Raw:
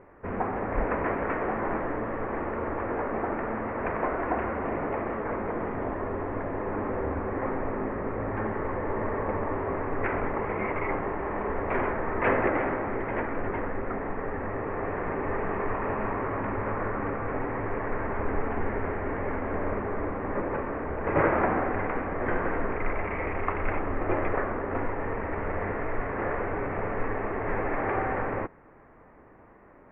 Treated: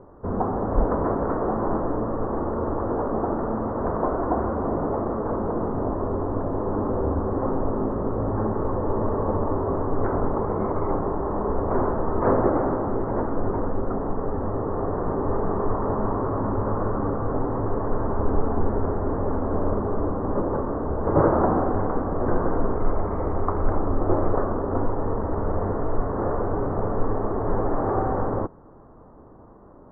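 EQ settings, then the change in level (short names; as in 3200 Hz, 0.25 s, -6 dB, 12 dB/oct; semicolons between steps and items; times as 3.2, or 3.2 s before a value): steep low-pass 1300 Hz 36 dB/oct; low shelf 400 Hz +6 dB; +2.5 dB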